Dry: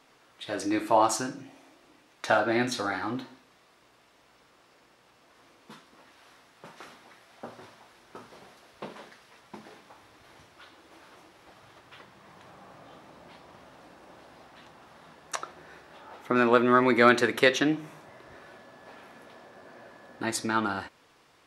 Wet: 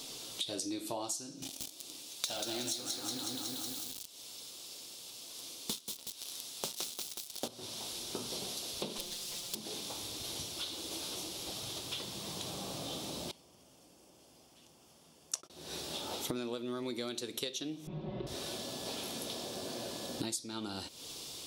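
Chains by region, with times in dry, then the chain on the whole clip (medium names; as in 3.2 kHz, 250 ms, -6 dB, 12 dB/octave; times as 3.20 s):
1.42–7.48 s: waveshaping leveller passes 3 + tilt EQ +1.5 dB/octave + bit-crushed delay 184 ms, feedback 55%, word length 7-bit, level -3.5 dB
8.98–9.55 s: comb filter that takes the minimum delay 5.7 ms + integer overflow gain 37 dB
13.31–15.50 s: gate -42 dBFS, range -58 dB + peaking EQ 3.9 kHz -14 dB 0.26 oct + upward compressor, threshold -41 dBFS
17.87–18.27 s: low-pass 3.4 kHz 24 dB/octave + tilt EQ -4 dB/octave + comb 5.4 ms, depth 95%
whole clip: FFT filter 400 Hz 0 dB, 1.8 kHz -14 dB, 3.5 kHz +10 dB, 9.9 kHz +14 dB; compression 16:1, threshold -47 dBFS; trim +11.5 dB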